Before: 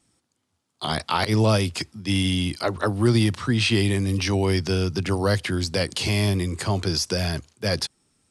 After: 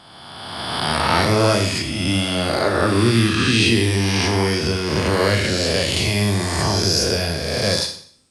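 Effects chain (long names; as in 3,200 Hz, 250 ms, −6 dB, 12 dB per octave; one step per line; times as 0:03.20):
peak hold with a rise ahead of every peak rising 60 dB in 1.93 s
four-comb reverb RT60 0.55 s, combs from 27 ms, DRR 4.5 dB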